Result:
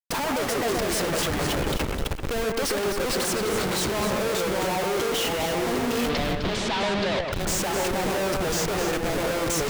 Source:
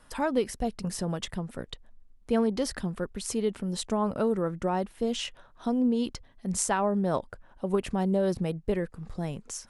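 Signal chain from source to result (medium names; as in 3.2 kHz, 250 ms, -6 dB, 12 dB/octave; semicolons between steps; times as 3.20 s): ever faster or slower copies 122 ms, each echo -2 st, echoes 3, each echo -6 dB; high-pass 470 Hz 12 dB/octave; waveshaping leveller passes 2; Schmitt trigger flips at -37.5 dBFS; 6.09–7.32 s: resonant low-pass 3.8 kHz, resonance Q 2; echo whose repeats swap between lows and highs 128 ms, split 2.5 kHz, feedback 55%, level -3 dB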